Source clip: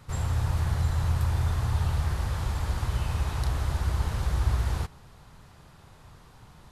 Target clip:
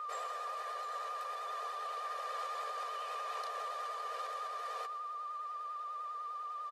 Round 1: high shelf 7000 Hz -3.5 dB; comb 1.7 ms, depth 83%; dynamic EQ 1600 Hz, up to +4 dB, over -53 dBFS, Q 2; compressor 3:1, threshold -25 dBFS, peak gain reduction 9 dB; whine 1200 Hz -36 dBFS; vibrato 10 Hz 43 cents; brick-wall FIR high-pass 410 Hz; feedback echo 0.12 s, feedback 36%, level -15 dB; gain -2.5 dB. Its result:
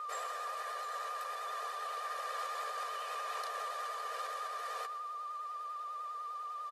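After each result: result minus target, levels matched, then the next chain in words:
8000 Hz band +4.5 dB; 2000 Hz band +3.0 dB
high shelf 7000 Hz -13 dB; comb 1.7 ms, depth 83%; dynamic EQ 1600 Hz, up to +4 dB, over -53 dBFS, Q 2; compressor 3:1, threshold -25 dBFS, peak gain reduction 9 dB; whine 1200 Hz -36 dBFS; vibrato 10 Hz 43 cents; brick-wall FIR high-pass 410 Hz; feedback echo 0.12 s, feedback 36%, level -15 dB; gain -2.5 dB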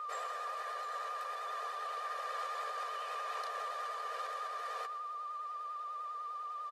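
2000 Hz band +2.5 dB
high shelf 7000 Hz -13 dB; comb 1.7 ms, depth 83%; compressor 3:1, threshold -25 dBFS, peak gain reduction 9 dB; whine 1200 Hz -36 dBFS; vibrato 10 Hz 43 cents; brick-wall FIR high-pass 410 Hz; feedback echo 0.12 s, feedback 36%, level -15 dB; gain -2.5 dB

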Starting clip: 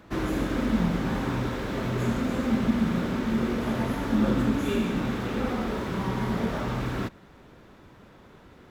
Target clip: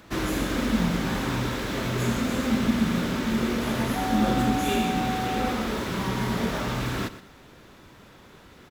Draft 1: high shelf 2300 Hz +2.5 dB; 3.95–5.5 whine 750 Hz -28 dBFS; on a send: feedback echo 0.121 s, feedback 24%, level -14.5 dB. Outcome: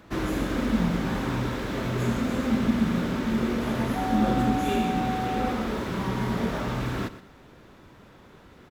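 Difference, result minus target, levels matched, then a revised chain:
4000 Hz band -4.5 dB
high shelf 2300 Hz +10 dB; 3.95–5.5 whine 750 Hz -28 dBFS; on a send: feedback echo 0.121 s, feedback 24%, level -14.5 dB

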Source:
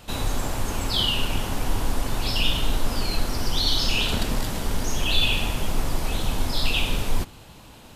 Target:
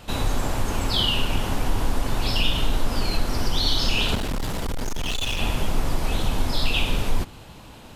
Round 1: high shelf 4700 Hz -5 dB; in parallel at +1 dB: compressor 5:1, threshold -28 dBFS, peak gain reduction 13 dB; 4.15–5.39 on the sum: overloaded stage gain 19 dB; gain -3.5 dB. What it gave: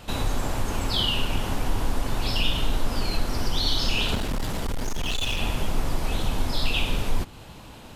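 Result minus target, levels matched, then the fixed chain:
compressor: peak gain reduction +6 dB
high shelf 4700 Hz -5 dB; in parallel at +1 dB: compressor 5:1, threshold -20.5 dBFS, peak gain reduction 7 dB; 4.15–5.39 on the sum: overloaded stage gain 19 dB; gain -3.5 dB

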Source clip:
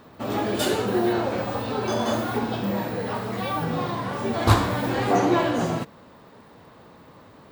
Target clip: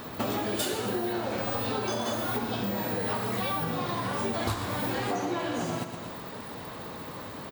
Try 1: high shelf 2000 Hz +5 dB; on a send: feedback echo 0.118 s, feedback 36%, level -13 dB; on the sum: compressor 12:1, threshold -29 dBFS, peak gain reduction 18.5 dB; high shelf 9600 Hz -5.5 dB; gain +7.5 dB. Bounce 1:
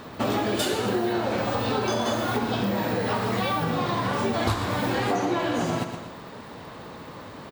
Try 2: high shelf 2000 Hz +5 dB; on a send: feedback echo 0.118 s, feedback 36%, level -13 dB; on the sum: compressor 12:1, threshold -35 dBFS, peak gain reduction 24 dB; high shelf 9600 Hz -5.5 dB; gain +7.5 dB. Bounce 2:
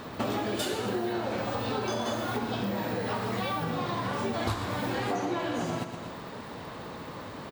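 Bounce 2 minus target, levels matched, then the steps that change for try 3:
8000 Hz band -2.5 dB
change: second high shelf 9600 Hz +5.5 dB

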